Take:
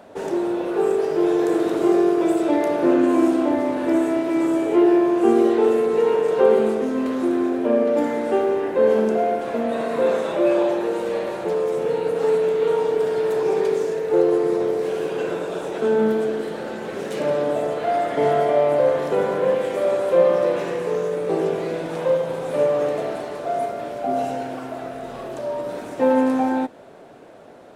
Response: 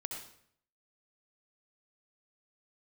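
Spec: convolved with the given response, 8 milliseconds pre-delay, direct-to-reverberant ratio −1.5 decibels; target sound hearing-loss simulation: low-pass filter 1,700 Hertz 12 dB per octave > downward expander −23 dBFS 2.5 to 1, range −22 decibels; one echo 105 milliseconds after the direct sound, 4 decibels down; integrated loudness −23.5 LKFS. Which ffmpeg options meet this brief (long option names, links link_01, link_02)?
-filter_complex "[0:a]aecho=1:1:105:0.631,asplit=2[link_01][link_02];[1:a]atrim=start_sample=2205,adelay=8[link_03];[link_02][link_03]afir=irnorm=-1:irlink=0,volume=2dB[link_04];[link_01][link_04]amix=inputs=2:normalize=0,lowpass=1700,agate=range=-22dB:threshold=-23dB:ratio=2.5,volume=-7dB"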